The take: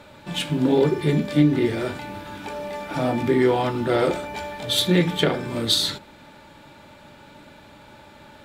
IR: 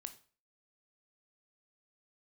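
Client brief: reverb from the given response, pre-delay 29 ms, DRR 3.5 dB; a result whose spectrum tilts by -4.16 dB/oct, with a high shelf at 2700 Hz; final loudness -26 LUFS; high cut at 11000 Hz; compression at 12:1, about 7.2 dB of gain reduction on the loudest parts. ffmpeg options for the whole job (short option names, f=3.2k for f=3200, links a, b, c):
-filter_complex "[0:a]lowpass=11k,highshelf=f=2.7k:g=-3.5,acompressor=threshold=-20dB:ratio=12,asplit=2[a][b];[1:a]atrim=start_sample=2205,adelay=29[c];[b][c]afir=irnorm=-1:irlink=0,volume=1dB[d];[a][d]amix=inputs=2:normalize=0,volume=-0.5dB"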